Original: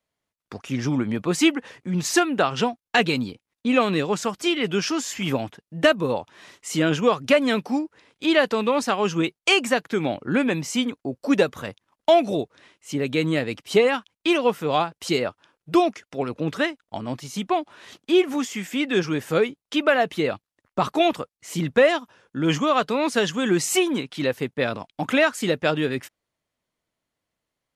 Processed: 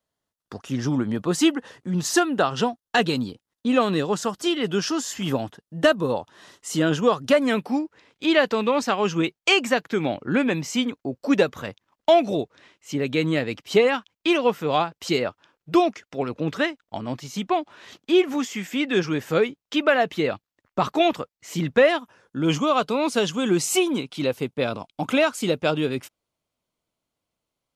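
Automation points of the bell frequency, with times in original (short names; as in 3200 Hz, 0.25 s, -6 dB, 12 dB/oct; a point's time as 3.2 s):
bell -10.5 dB 0.32 oct
7.32 s 2300 Hz
7.82 s 9700 Hz
21.79 s 9700 Hz
22.4 s 1800 Hz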